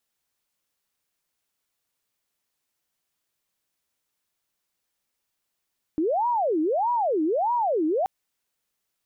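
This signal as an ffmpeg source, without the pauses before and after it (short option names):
-f lavfi -i "aevalsrc='0.0944*sin(2*PI*(638.5*t-332.5/(2*PI*1.6)*sin(2*PI*1.6*t)))':d=2.08:s=44100"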